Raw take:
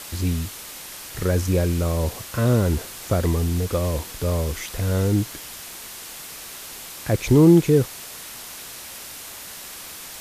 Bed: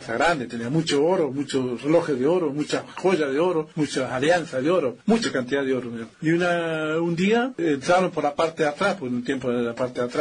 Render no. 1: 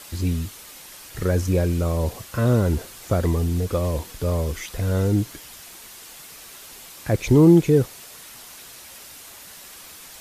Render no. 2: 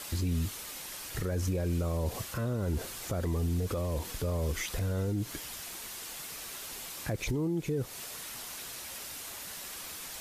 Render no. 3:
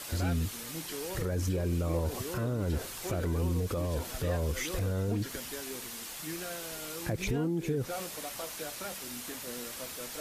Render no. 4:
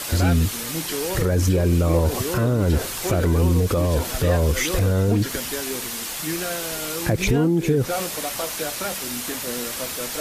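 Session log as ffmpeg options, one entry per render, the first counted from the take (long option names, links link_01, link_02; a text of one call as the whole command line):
ffmpeg -i in.wav -af "afftdn=noise_reduction=6:noise_floor=-38" out.wav
ffmpeg -i in.wav -af "acompressor=threshold=-22dB:ratio=6,alimiter=limit=-24dB:level=0:latency=1:release=79" out.wav
ffmpeg -i in.wav -i bed.wav -filter_complex "[1:a]volume=-20dB[link_01];[0:a][link_01]amix=inputs=2:normalize=0" out.wav
ffmpeg -i in.wav -af "volume=12dB" out.wav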